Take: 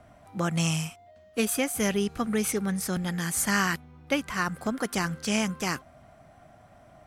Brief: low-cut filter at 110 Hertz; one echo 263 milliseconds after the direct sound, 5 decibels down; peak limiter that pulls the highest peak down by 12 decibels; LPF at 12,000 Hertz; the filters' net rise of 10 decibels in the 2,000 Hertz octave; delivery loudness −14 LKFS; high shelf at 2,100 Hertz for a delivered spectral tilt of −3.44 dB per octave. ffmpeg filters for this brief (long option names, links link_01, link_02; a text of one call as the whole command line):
ffmpeg -i in.wav -af "highpass=110,lowpass=12000,equalizer=frequency=2000:width_type=o:gain=8,highshelf=frequency=2100:gain=7.5,alimiter=limit=-15dB:level=0:latency=1,aecho=1:1:263:0.562,volume=11.5dB" out.wav